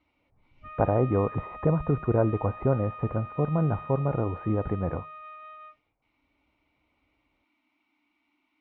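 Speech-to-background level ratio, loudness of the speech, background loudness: 14.5 dB, -27.5 LUFS, -42.0 LUFS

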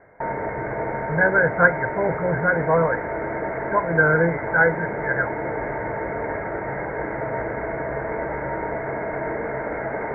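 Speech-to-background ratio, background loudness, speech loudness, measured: 6.5 dB, -27.5 LUFS, -21.0 LUFS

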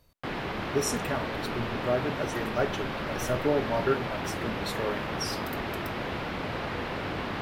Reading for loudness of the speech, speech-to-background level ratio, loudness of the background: -32.0 LUFS, 1.0 dB, -33.0 LUFS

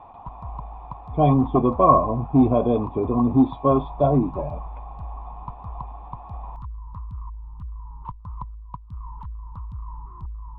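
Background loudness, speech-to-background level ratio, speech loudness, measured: -38.0 LUFS, 18.0 dB, -20.0 LUFS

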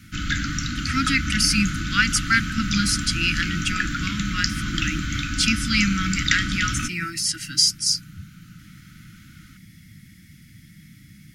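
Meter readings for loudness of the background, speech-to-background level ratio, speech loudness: -26.5 LUFS, 3.5 dB, -23.0 LUFS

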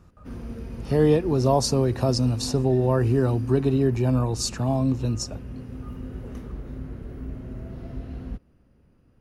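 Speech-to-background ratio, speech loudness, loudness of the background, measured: 14.5 dB, -23.0 LUFS, -37.5 LUFS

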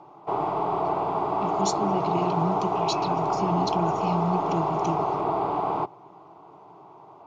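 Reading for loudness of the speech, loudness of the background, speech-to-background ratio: -30.5 LUFS, -26.5 LUFS, -4.0 dB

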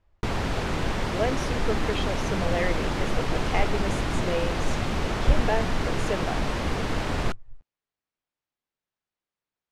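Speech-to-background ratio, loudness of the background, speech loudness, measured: -3.0 dB, -28.5 LUFS, -31.5 LUFS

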